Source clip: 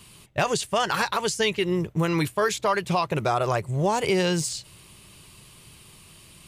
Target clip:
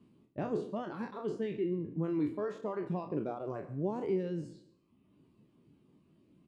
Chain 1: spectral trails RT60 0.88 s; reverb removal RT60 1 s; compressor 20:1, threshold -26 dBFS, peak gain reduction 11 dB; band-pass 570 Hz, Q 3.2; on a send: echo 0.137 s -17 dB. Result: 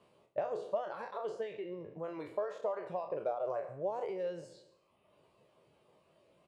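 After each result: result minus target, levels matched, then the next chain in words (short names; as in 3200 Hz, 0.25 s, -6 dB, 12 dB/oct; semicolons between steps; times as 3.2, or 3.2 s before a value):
250 Hz band -11.5 dB; compressor: peak gain reduction +11 dB
spectral trails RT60 0.88 s; reverb removal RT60 1 s; compressor 20:1, threshold -26 dBFS, peak gain reduction 11 dB; band-pass 270 Hz, Q 3.2; on a send: echo 0.137 s -17 dB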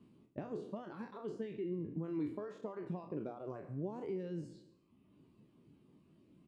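compressor: peak gain reduction +11 dB
spectral trails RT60 0.88 s; reverb removal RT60 1 s; band-pass 270 Hz, Q 3.2; on a send: echo 0.137 s -17 dB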